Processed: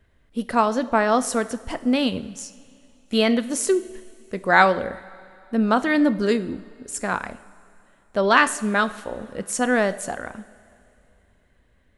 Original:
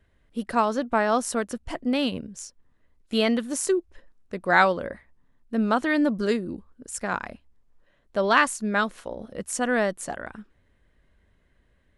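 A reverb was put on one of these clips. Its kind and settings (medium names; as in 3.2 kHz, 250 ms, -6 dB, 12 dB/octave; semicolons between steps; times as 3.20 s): two-slope reverb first 0.57 s, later 2.8 s, from -13 dB, DRR 12 dB; trim +3 dB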